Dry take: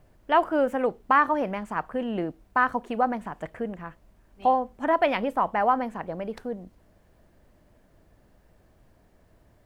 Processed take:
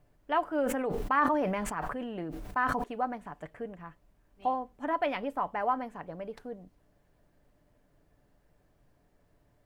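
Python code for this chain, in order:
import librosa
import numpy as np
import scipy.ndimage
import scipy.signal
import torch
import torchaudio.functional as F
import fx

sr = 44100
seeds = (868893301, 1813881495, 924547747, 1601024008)

y = x + 0.34 * np.pad(x, (int(6.9 * sr / 1000.0), 0))[:len(x)]
y = fx.sustainer(y, sr, db_per_s=23.0, at=(0.61, 2.84))
y = y * 10.0 ** (-8.0 / 20.0)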